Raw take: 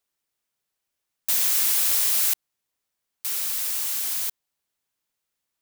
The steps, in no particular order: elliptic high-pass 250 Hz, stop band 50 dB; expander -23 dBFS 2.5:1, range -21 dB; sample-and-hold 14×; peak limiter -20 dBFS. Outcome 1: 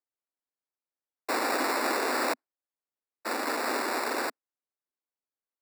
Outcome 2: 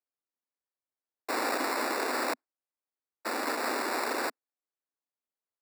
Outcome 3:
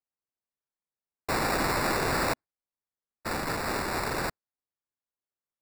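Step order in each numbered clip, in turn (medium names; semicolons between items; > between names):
expander > sample-and-hold > peak limiter > elliptic high-pass; expander > peak limiter > sample-and-hold > elliptic high-pass; elliptic high-pass > sample-and-hold > expander > peak limiter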